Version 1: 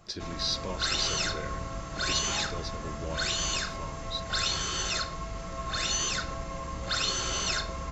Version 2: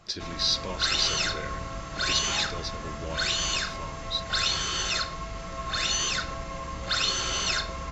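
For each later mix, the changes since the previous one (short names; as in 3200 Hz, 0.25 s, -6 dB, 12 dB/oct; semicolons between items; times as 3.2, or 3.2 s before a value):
background: add high shelf 5400 Hz -5.5 dB; master: add bell 3500 Hz +5.5 dB 2.8 oct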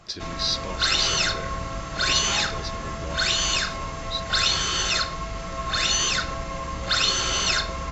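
background +4.5 dB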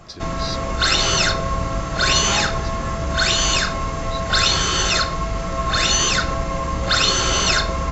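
background +9.0 dB; master: add bell 3500 Hz -5.5 dB 2.8 oct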